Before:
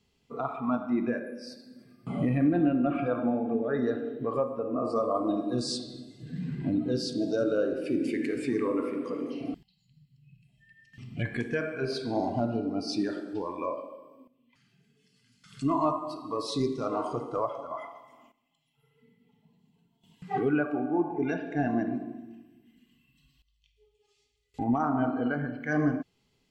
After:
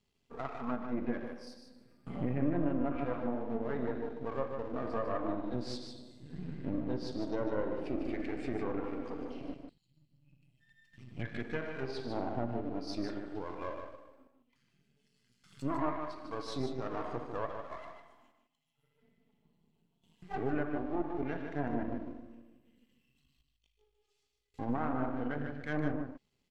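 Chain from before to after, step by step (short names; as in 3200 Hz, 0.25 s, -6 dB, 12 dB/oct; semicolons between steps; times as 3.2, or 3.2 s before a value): half-wave gain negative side -12 dB; treble ducked by the level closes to 2100 Hz, closed at -24.5 dBFS; echo 0.151 s -7 dB; gain -5 dB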